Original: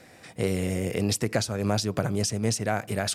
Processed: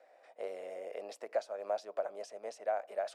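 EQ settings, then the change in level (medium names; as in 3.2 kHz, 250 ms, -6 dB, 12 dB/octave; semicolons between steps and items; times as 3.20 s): ladder high-pass 550 Hz, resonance 65%; low-pass 1.3 kHz 6 dB/octave; -1.5 dB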